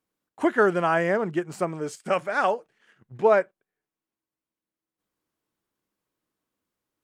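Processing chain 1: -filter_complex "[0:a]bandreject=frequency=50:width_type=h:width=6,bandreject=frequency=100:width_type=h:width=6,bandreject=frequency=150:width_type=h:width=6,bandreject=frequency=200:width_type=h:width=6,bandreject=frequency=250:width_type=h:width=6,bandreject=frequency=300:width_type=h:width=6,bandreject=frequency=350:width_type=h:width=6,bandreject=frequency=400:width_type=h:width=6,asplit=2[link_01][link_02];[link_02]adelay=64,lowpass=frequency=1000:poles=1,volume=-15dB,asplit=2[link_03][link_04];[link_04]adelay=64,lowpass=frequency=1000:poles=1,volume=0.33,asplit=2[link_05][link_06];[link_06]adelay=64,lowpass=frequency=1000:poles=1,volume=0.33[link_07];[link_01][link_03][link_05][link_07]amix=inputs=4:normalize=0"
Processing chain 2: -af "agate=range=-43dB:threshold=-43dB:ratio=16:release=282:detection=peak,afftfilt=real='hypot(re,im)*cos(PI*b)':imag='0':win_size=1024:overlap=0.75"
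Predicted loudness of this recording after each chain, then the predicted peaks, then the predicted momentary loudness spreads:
−24.5, −28.5 LKFS; −7.0, −9.5 dBFS; 9, 8 LU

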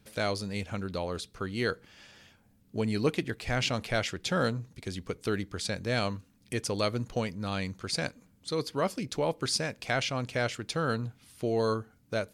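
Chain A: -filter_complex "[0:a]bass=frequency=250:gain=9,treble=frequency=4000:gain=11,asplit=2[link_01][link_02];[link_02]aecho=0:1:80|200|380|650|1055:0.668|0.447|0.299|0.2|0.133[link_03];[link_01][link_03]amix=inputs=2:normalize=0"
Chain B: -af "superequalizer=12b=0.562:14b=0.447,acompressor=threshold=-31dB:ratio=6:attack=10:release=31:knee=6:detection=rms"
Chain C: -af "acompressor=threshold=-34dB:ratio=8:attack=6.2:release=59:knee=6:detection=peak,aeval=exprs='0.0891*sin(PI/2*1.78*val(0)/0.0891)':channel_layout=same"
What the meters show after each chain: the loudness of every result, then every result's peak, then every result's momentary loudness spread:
−25.0, −36.5, −30.5 LKFS; −8.0, −20.0, −21.0 dBFS; 7, 7, 7 LU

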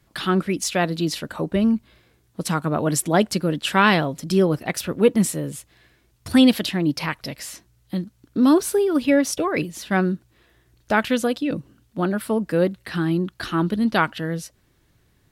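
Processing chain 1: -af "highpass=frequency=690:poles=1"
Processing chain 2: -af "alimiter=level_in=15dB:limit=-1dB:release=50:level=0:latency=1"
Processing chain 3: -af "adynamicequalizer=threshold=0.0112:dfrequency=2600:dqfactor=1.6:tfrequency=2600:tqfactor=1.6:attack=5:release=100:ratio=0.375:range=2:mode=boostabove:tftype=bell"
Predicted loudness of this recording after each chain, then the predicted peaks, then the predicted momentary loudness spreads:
−26.5, −11.0, −21.5 LKFS; −4.0, −1.0, −2.0 dBFS; 14, 8, 13 LU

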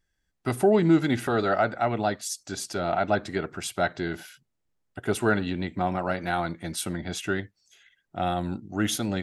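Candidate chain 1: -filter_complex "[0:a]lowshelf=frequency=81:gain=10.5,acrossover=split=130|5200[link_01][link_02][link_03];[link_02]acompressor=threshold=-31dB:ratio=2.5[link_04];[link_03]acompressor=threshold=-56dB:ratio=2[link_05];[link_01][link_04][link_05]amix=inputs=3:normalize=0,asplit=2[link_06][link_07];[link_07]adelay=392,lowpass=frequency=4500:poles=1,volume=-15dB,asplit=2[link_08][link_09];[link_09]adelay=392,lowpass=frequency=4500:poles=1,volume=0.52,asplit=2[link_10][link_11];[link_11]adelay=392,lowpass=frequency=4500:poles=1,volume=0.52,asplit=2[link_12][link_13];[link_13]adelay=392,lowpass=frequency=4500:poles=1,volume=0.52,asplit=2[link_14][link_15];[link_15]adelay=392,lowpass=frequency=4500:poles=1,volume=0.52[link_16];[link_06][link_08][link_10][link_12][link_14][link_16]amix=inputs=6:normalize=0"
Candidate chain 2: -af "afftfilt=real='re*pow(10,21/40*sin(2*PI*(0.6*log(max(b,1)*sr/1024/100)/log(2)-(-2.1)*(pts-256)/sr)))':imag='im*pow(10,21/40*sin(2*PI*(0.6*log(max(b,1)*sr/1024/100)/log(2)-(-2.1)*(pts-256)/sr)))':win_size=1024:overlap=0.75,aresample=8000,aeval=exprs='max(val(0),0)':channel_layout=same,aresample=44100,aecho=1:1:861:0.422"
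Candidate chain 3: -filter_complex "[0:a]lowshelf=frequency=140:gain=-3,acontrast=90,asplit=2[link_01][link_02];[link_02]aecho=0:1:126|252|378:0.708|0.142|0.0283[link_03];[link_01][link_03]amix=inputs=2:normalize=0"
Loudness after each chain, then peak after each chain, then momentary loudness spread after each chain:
−32.0, −27.0, −19.0 LKFS; −16.5, −5.0, −2.0 dBFS; 13, 15, 11 LU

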